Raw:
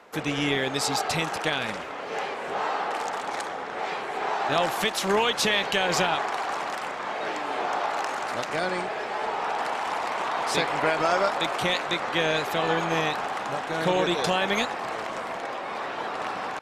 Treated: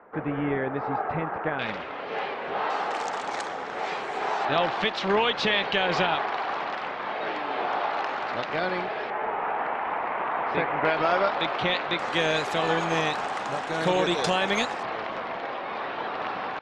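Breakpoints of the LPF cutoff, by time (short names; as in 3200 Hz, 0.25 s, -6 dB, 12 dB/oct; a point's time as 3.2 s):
LPF 24 dB/oct
1700 Hz
from 1.59 s 4100 Hz
from 2.7 s 7900 Hz
from 4.45 s 4200 Hz
from 9.1 s 2400 Hz
from 10.85 s 4100 Hz
from 11.99 s 9500 Hz
from 14.83 s 4200 Hz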